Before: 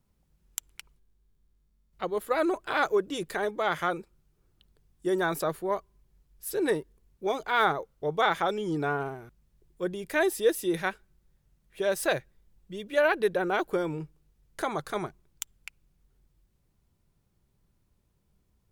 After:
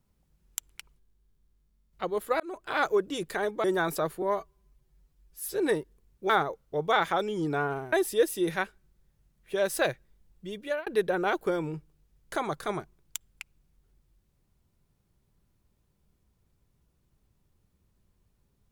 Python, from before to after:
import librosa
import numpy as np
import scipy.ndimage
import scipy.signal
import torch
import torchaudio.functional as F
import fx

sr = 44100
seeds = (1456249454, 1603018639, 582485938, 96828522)

y = fx.edit(x, sr, fx.fade_in_span(start_s=2.4, length_s=0.55, curve='qsin'),
    fx.cut(start_s=3.64, length_s=1.44),
    fx.stretch_span(start_s=5.66, length_s=0.89, factor=1.5),
    fx.cut(start_s=7.29, length_s=0.3),
    fx.cut(start_s=9.22, length_s=0.97),
    fx.fade_out_span(start_s=12.83, length_s=0.3), tone=tone)